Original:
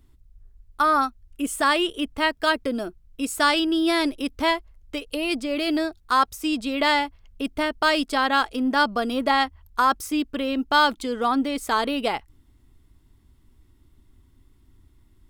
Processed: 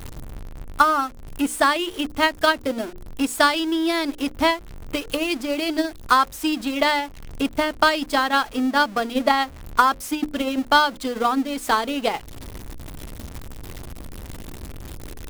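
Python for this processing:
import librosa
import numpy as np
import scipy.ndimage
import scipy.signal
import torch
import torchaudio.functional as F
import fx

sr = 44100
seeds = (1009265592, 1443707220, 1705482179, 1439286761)

y = x + 0.5 * 10.0 ** (-27.0 / 20.0) * np.sign(x)
y = fx.hum_notches(y, sr, base_hz=60, count=9)
y = fx.transient(y, sr, attack_db=9, sustain_db=-6)
y = F.gain(torch.from_numpy(y), -2.5).numpy()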